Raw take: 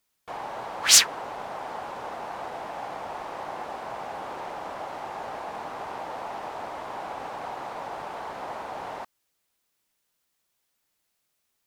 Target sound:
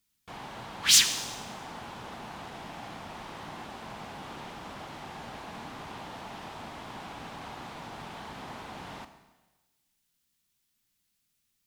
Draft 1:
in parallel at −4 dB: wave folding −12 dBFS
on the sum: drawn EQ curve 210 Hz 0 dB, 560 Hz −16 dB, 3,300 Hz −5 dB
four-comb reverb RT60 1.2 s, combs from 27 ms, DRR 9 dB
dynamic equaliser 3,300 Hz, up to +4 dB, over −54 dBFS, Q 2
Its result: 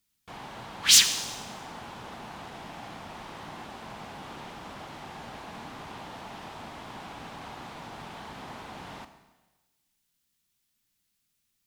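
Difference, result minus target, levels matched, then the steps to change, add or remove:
wave folding: distortion −7 dB
change: wave folding −19 dBFS

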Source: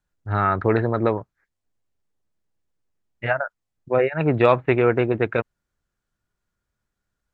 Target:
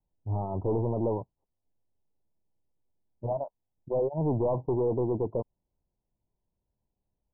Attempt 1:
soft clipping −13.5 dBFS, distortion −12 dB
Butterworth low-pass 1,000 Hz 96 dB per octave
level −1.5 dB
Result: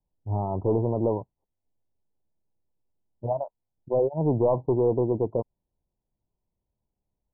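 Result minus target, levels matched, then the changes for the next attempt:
soft clipping: distortion −6 dB
change: soft clipping −21.5 dBFS, distortion −6 dB

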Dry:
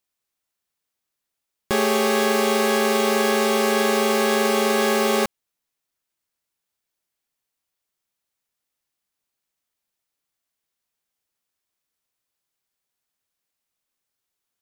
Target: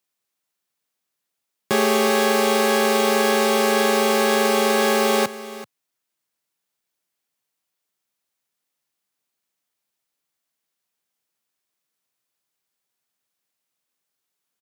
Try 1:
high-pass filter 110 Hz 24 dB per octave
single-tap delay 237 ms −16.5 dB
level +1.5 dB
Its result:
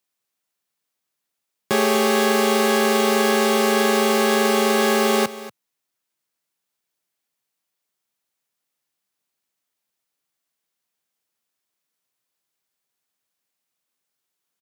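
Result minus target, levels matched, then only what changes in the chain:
echo 147 ms early
change: single-tap delay 384 ms −16.5 dB

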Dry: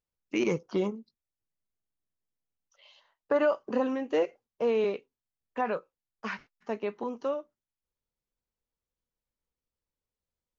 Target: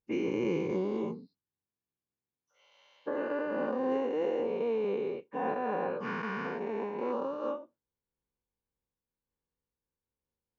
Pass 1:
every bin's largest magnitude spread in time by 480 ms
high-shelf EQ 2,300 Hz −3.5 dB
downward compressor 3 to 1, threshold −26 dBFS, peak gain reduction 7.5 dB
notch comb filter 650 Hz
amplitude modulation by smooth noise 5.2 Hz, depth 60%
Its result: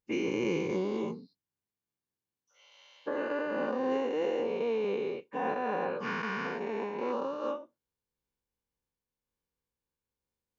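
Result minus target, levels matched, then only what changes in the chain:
4,000 Hz band +5.5 dB
change: high-shelf EQ 2,300 Hz −13.5 dB

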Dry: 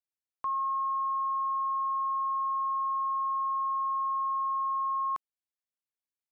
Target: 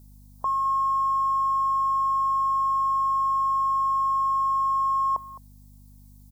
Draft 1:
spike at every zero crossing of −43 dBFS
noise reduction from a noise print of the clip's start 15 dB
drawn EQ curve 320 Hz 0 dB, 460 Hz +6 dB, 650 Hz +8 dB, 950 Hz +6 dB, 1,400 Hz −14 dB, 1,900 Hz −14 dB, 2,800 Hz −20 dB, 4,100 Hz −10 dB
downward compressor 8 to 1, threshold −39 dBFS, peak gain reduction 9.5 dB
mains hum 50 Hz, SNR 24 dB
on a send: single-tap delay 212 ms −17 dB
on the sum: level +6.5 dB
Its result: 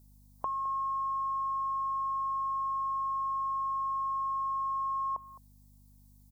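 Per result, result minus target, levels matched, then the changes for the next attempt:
downward compressor: peak gain reduction +9.5 dB; spike at every zero crossing: distortion −7 dB
remove: downward compressor 8 to 1, threshold −39 dBFS, peak gain reduction 9.5 dB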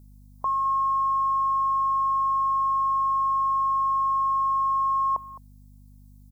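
spike at every zero crossing: distortion −7 dB
change: spike at every zero crossing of −36 dBFS

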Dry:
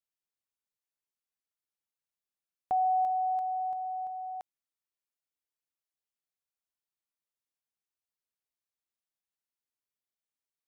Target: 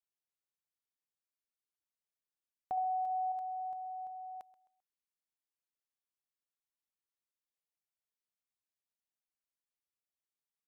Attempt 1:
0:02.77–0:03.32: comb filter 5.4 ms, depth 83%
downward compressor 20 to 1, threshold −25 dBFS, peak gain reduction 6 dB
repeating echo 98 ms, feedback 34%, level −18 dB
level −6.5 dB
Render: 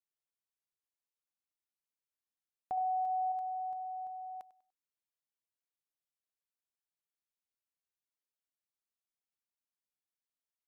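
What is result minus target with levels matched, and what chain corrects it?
echo 33 ms early
0:02.77–0:03.32: comb filter 5.4 ms, depth 83%
downward compressor 20 to 1, threshold −25 dBFS, peak gain reduction 6 dB
repeating echo 131 ms, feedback 34%, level −18 dB
level −6.5 dB

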